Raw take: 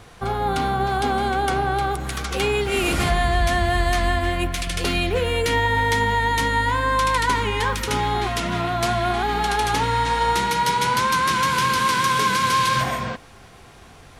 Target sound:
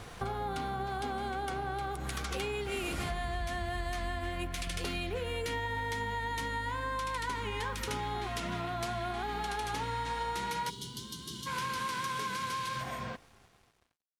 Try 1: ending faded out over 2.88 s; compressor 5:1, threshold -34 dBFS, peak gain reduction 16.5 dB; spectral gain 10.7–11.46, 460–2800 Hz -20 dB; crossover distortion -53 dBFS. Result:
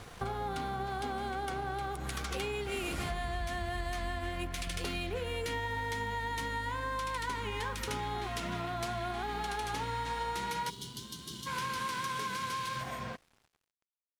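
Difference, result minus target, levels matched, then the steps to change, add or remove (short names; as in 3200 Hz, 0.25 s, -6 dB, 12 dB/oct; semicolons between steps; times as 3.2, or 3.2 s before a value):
crossover distortion: distortion +9 dB
change: crossover distortion -62 dBFS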